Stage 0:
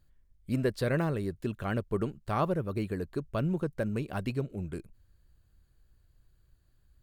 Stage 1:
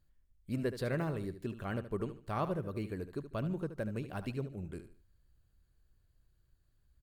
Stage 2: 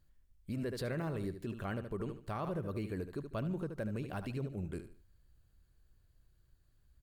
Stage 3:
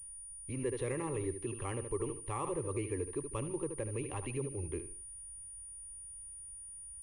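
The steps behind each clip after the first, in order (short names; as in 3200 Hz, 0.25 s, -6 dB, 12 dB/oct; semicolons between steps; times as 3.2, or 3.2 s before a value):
feedback echo 74 ms, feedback 30%, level -11.5 dB; gain -6 dB
limiter -32 dBFS, peak gain reduction 8.5 dB; gain +2.5 dB
fixed phaser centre 990 Hz, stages 8; pulse-width modulation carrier 9500 Hz; gain +5 dB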